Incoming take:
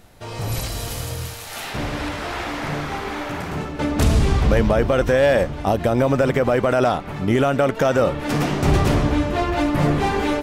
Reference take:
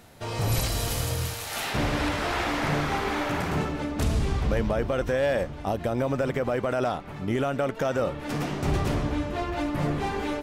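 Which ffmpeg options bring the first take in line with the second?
-af "agate=range=0.0891:threshold=0.0794,asetnsamples=n=441:p=0,asendcmd='3.79 volume volume -8.5dB',volume=1"

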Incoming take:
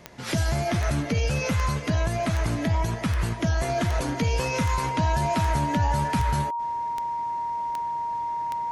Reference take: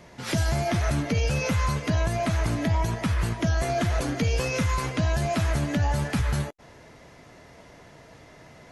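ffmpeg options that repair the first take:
-af "adeclick=t=4,bandreject=f=940:w=30"

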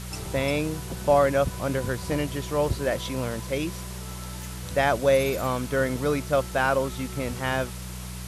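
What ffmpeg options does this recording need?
-af "bandreject=f=61.6:t=h:w=4,bandreject=f=123.2:t=h:w=4,bandreject=f=184.8:t=h:w=4,afwtdn=0.0089"

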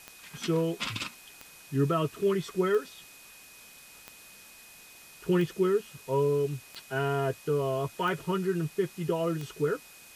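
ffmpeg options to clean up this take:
-af "adeclick=t=4,bandreject=f=2500:w=30,afwtdn=0.0028"

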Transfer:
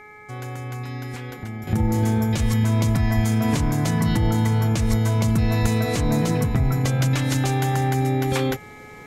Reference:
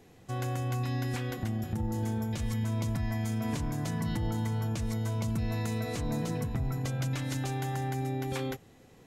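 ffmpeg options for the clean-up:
-filter_complex "[0:a]bandreject=f=422.5:t=h:w=4,bandreject=f=845:t=h:w=4,bandreject=f=1267.5:t=h:w=4,bandreject=f=1690:t=h:w=4,bandreject=f=2112.5:t=h:w=4,bandreject=f=2300:w=30,asplit=3[s0][s1][s2];[s0]afade=t=out:st=3.15:d=0.02[s3];[s1]highpass=f=140:w=0.5412,highpass=f=140:w=1.3066,afade=t=in:st=3.15:d=0.02,afade=t=out:st=3.27:d=0.02[s4];[s2]afade=t=in:st=3.27:d=0.02[s5];[s3][s4][s5]amix=inputs=3:normalize=0,asplit=3[s6][s7][s8];[s6]afade=t=out:st=4.89:d=0.02[s9];[s7]highpass=f=140:w=0.5412,highpass=f=140:w=1.3066,afade=t=in:st=4.89:d=0.02,afade=t=out:st=5.01:d=0.02[s10];[s8]afade=t=in:st=5.01:d=0.02[s11];[s9][s10][s11]amix=inputs=3:normalize=0,asplit=3[s12][s13][s14];[s12]afade=t=out:st=5.61:d=0.02[s15];[s13]highpass=f=140:w=0.5412,highpass=f=140:w=1.3066,afade=t=in:st=5.61:d=0.02,afade=t=out:st=5.73:d=0.02[s16];[s14]afade=t=in:st=5.73:d=0.02[s17];[s15][s16][s17]amix=inputs=3:normalize=0,asetnsamples=n=441:p=0,asendcmd='1.67 volume volume -11.5dB',volume=1"

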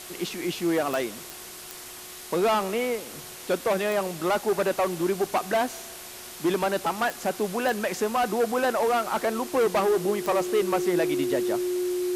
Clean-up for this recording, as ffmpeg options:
-af "adeclick=t=4,bandreject=f=362.9:t=h:w=4,bandreject=f=725.8:t=h:w=4,bandreject=f=1088.7:t=h:w=4,bandreject=f=1451.6:t=h:w=4,bandreject=f=360:w=30,afwtdn=0.01"

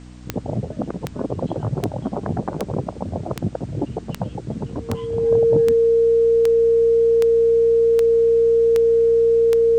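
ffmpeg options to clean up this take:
-af "adeclick=t=4,bandreject=f=61.3:t=h:w=4,bandreject=f=122.6:t=h:w=4,bandreject=f=183.9:t=h:w=4,bandreject=f=245.2:t=h:w=4,bandreject=f=306.5:t=h:w=4,bandreject=f=460:w=30,agate=range=0.0891:threshold=0.0447"

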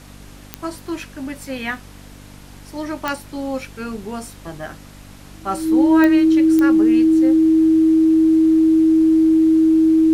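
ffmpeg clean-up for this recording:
-af "adeclick=t=4,bandreject=f=49.1:t=h:w=4,bandreject=f=98.2:t=h:w=4,bandreject=f=147.3:t=h:w=4,bandreject=f=196.4:t=h:w=4,bandreject=f=245.5:t=h:w=4,bandreject=f=294.6:t=h:w=4,bandreject=f=320:w=30,agate=range=0.0891:threshold=0.0251"

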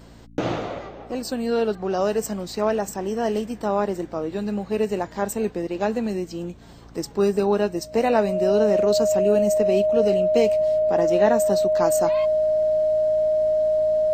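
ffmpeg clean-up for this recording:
-af "bandreject=f=57.1:t=h:w=4,bandreject=f=114.2:t=h:w=4,bandreject=f=171.3:t=h:w=4,bandreject=f=228.4:t=h:w=4,bandreject=f=285.5:t=h:w=4,bandreject=f=620:w=30"

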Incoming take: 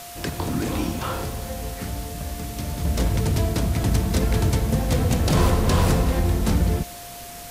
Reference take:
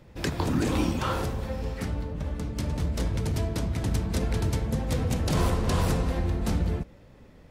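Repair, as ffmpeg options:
-af "bandreject=f=700:w=30,afwtdn=0.011,asetnsamples=n=441:p=0,asendcmd='2.85 volume volume -6dB',volume=1"

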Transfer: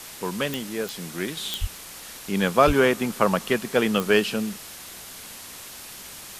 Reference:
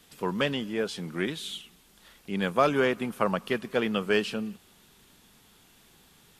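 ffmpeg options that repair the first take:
-filter_complex "[0:a]adeclick=t=4,asplit=3[s0][s1][s2];[s0]afade=t=out:st=1.6:d=0.02[s3];[s1]highpass=f=140:w=0.5412,highpass=f=140:w=1.3066,afade=t=in:st=1.6:d=0.02,afade=t=out:st=1.72:d=0.02[s4];[s2]afade=t=in:st=1.72:d=0.02[s5];[s3][s4][s5]amix=inputs=3:normalize=0,asplit=3[s6][s7][s8];[s6]afade=t=out:st=2.66:d=0.02[s9];[s7]highpass=f=140:w=0.5412,highpass=f=140:w=1.3066,afade=t=in:st=2.66:d=0.02,afade=t=out:st=2.78:d=0.02[s10];[s8]afade=t=in:st=2.78:d=0.02[s11];[s9][s10][s11]amix=inputs=3:normalize=0,afwtdn=0.011,asetnsamples=n=441:p=0,asendcmd='1.37 volume volume -5.5dB',volume=1"

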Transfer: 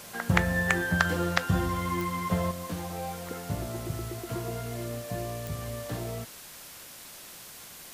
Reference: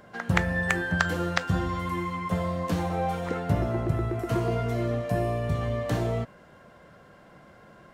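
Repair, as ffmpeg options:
-af "adeclick=t=4,afwtdn=0.0056,asetnsamples=n=441:p=0,asendcmd='2.51 volume volume 8dB',volume=1"

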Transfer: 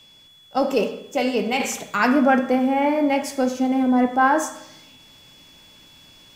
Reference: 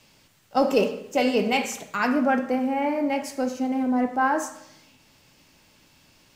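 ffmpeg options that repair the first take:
-af "bandreject=f=3400:w=30,asetnsamples=n=441:p=0,asendcmd='1.6 volume volume -5dB',volume=1"

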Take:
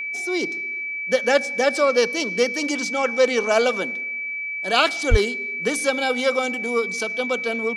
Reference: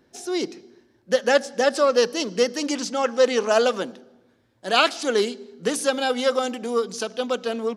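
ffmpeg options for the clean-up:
-filter_complex "[0:a]bandreject=f=2300:w=30,asplit=3[s0][s1][s2];[s0]afade=t=out:st=5.1:d=0.02[s3];[s1]highpass=f=140:w=0.5412,highpass=f=140:w=1.3066,afade=t=in:st=5.1:d=0.02,afade=t=out:st=5.22:d=0.02[s4];[s2]afade=t=in:st=5.22:d=0.02[s5];[s3][s4][s5]amix=inputs=3:normalize=0"

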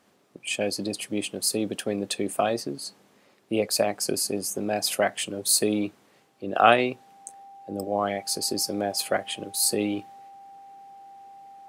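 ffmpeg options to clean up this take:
-af "bandreject=f=790:w=30"

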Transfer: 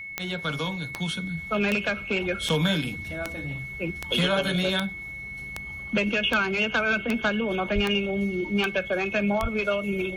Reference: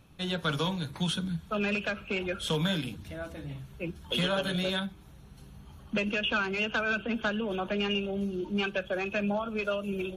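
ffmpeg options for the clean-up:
-filter_complex "[0:a]adeclick=t=4,bandreject=f=2200:w=30,asplit=3[s0][s1][s2];[s0]afade=t=out:st=7.74:d=0.02[s3];[s1]highpass=f=140:w=0.5412,highpass=f=140:w=1.3066,afade=t=in:st=7.74:d=0.02,afade=t=out:st=7.86:d=0.02[s4];[s2]afade=t=in:st=7.86:d=0.02[s5];[s3][s4][s5]amix=inputs=3:normalize=0,asplit=3[s6][s7][s8];[s6]afade=t=out:st=9.41:d=0.02[s9];[s7]highpass=f=140:w=0.5412,highpass=f=140:w=1.3066,afade=t=in:st=9.41:d=0.02,afade=t=out:st=9.53:d=0.02[s10];[s8]afade=t=in:st=9.53:d=0.02[s11];[s9][s10][s11]amix=inputs=3:normalize=0,asetnsamples=n=441:p=0,asendcmd='1.37 volume volume -5dB',volume=1"

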